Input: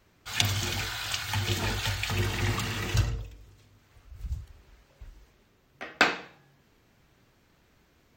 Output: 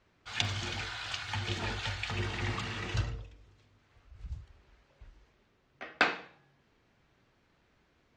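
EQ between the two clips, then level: distance through air 110 m; bass shelf 350 Hz -4 dB; -3.0 dB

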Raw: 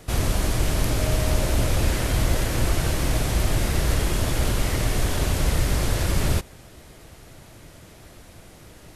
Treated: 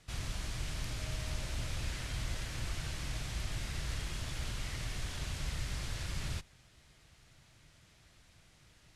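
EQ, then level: distance through air 65 m; amplifier tone stack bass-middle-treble 5-5-5; peaking EQ 140 Hz +4 dB 0.36 oct; -2.5 dB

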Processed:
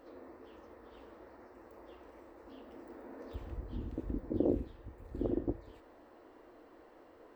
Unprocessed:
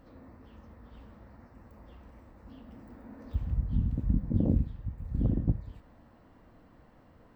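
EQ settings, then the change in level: resonant low shelf 250 Hz -13 dB, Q 3; +1.0 dB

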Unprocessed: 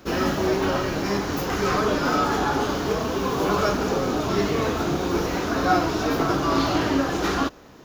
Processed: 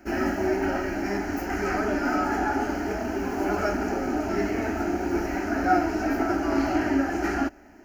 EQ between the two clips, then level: treble shelf 6 kHz -8 dB; static phaser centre 730 Hz, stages 8; 0.0 dB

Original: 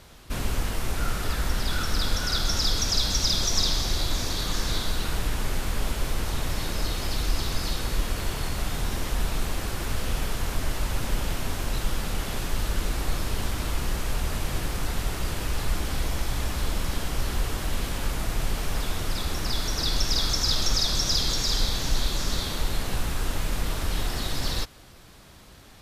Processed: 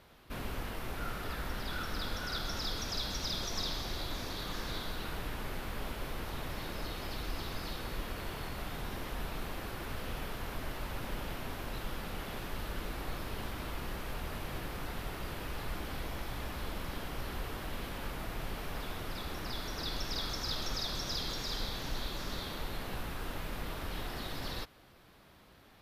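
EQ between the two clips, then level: bass shelf 120 Hz -8.5 dB; peaking EQ 7.4 kHz -12 dB 1.3 oct; -6.5 dB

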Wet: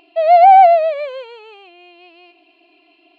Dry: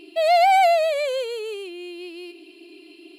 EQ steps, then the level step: tape spacing loss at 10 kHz 39 dB; resonant low shelf 550 Hz -11 dB, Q 3; +6.0 dB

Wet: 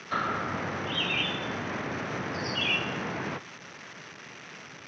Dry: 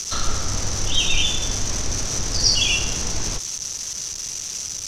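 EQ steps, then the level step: high-pass 140 Hz 24 dB/octave; four-pole ladder low-pass 2.4 kHz, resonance 35%; +7.5 dB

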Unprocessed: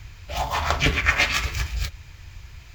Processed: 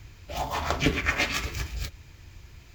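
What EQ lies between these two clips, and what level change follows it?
peaking EQ 300 Hz +10.5 dB 1.9 oct; treble shelf 5.3 kHz +5 dB; -7.5 dB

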